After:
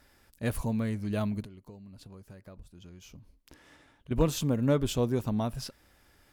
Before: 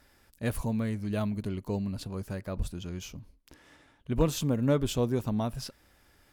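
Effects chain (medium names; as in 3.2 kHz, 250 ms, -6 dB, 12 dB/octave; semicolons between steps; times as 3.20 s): 1.43–4.11 s: compression 16:1, threshold -45 dBFS, peak gain reduction 21 dB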